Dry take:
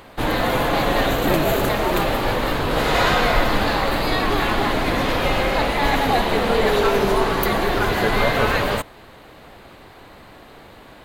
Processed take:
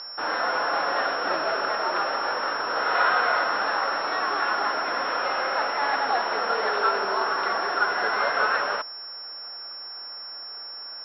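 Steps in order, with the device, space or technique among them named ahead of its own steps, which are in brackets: toy sound module (decimation joined by straight lines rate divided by 4×; class-D stage that switches slowly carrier 5.4 kHz; cabinet simulation 670–4400 Hz, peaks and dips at 1.4 kHz +9 dB, 2.2 kHz -5 dB, 4.2 kHz +6 dB); trim -3 dB

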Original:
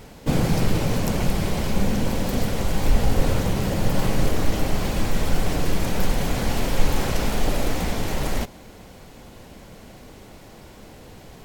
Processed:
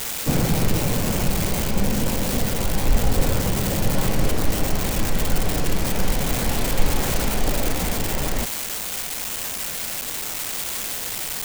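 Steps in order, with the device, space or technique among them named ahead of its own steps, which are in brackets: budget class-D amplifier (dead-time distortion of 0.14 ms; zero-crossing glitches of -10 dBFS)

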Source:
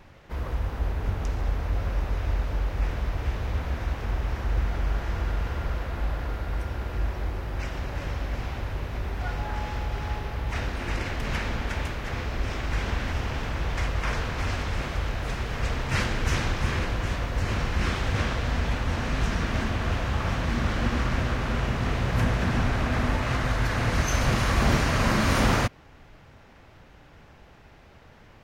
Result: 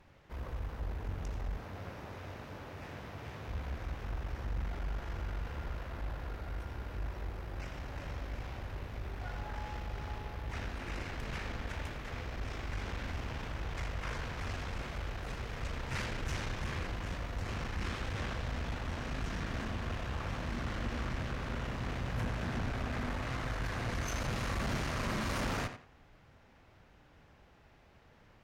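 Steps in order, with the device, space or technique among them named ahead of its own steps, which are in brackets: 1.57–3.48 s: high-pass 96 Hz 24 dB/octave; rockabilly slapback (valve stage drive 22 dB, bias 0.5; tape echo 89 ms, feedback 28%, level -8 dB, low-pass 4.4 kHz); trim -8 dB

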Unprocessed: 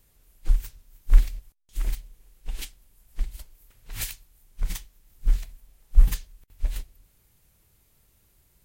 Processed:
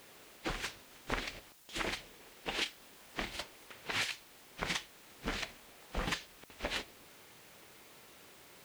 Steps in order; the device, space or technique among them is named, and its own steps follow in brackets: baby monitor (band-pass 320–3700 Hz; compression 6:1, threshold -48 dBFS, peak gain reduction 12.5 dB; white noise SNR 19 dB); 2.63–3.36 s: doubling 26 ms -8 dB; trim +15.5 dB

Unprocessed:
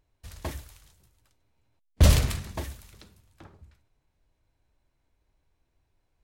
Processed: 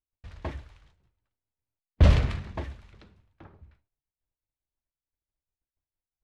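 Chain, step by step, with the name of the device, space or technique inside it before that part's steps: hearing-loss simulation (low-pass 2.7 kHz 12 dB/octave; expander -56 dBFS)

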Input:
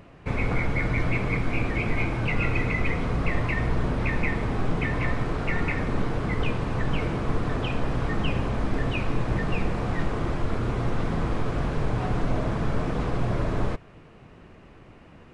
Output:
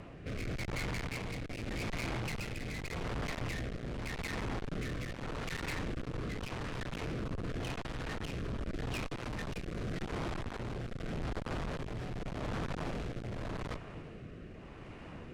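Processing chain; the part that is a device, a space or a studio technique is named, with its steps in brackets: 9.22–9.95 s: treble shelf 4.5 kHz +4 dB; overdriven rotary cabinet (valve stage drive 39 dB, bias 0.25; rotary cabinet horn 0.85 Hz); trim +4.5 dB

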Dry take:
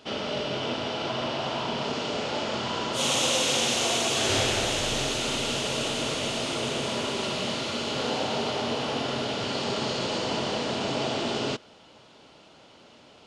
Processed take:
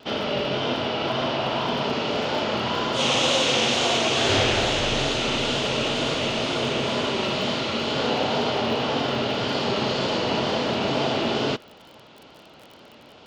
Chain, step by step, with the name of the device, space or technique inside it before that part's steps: lo-fi chain (low-pass 4.5 kHz 12 dB/octave; wow and flutter; crackle 28 per s -41 dBFS); trim +5 dB

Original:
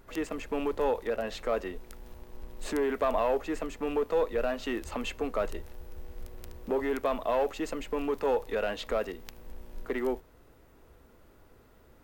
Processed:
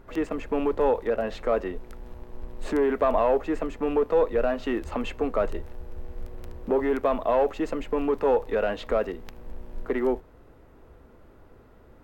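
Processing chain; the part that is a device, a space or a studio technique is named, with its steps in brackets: through cloth (treble shelf 3 kHz -13.5 dB); trim +6 dB

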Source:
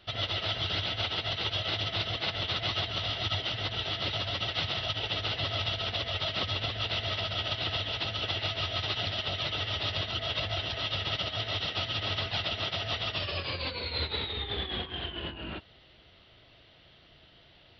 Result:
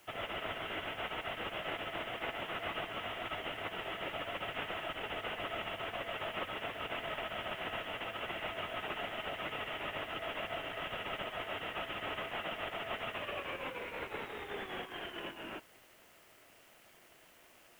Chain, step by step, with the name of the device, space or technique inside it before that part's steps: army field radio (band-pass 310–2800 Hz; CVSD coder 16 kbps; white noise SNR 25 dB); trim -2 dB

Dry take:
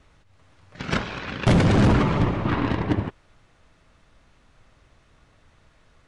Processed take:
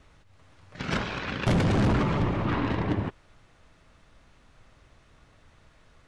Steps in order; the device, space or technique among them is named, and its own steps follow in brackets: soft clipper into limiter (saturation -15 dBFS, distortion -18 dB; peak limiter -19.5 dBFS, peak gain reduction 3.5 dB)

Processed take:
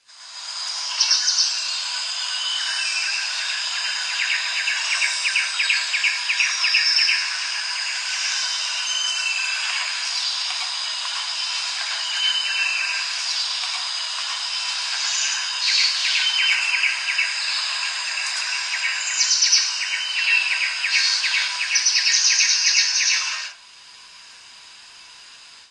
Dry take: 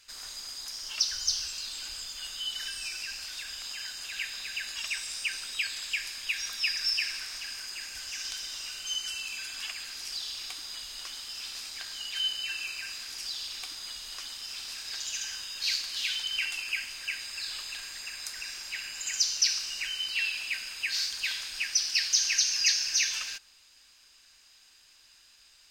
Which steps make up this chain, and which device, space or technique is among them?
elliptic high-pass 650 Hz, stop band 50 dB; dynamic bell 3.2 kHz, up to -5 dB, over -43 dBFS, Q 2.4; filmed off a television (band-pass 230–7600 Hz; peaking EQ 1 kHz +10 dB 0.21 oct; reverberation RT60 0.35 s, pre-delay 99 ms, DRR -3 dB; white noise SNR 33 dB; level rider gain up to 13.5 dB; trim -2 dB; AAC 32 kbps 22.05 kHz)

